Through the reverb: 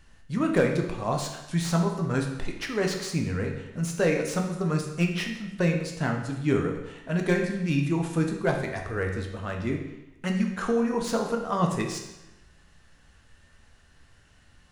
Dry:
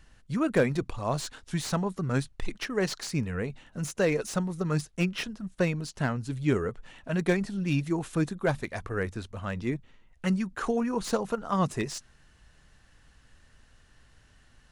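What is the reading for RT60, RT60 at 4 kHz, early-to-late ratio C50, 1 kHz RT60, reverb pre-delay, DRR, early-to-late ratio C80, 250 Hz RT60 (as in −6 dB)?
0.95 s, 0.90 s, 5.5 dB, 0.95 s, 11 ms, 1.5 dB, 8.0 dB, 1.0 s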